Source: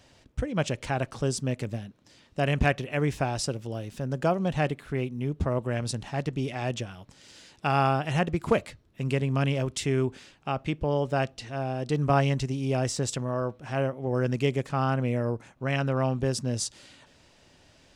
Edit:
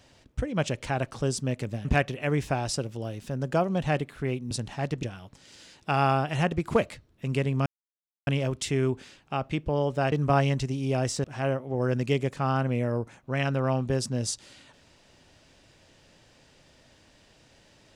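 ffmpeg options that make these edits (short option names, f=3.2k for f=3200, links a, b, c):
-filter_complex "[0:a]asplit=7[a][b][c][d][e][f][g];[a]atrim=end=1.852[h];[b]atrim=start=2.548:end=5.212[i];[c]atrim=start=5.858:end=6.382[j];[d]atrim=start=6.788:end=9.42,asetpts=PTS-STARTPTS,afade=t=out:st=2.628:d=0.004:c=hsin,apad=pad_dur=0.61[k];[e]atrim=start=9.42:end=11.272,asetpts=PTS-STARTPTS,afade=t=in:d=0.004:c=hsin[l];[f]atrim=start=11.918:end=13.042[m];[g]atrim=start=13.568[n];[h][i]acrossfade=d=0.004:c1=hsin:c2=hsin[o];[o][j]acrossfade=d=0.004:c1=hsin:c2=hsin[p];[k][l]concat=n=2:v=0:a=1[q];[p][q]acrossfade=d=0.004:c1=hsin:c2=hsin[r];[r][m]acrossfade=d=0.004:c1=hsin:c2=hsin[s];[s][n]acrossfade=d=0.004:c1=hsin:c2=hsin"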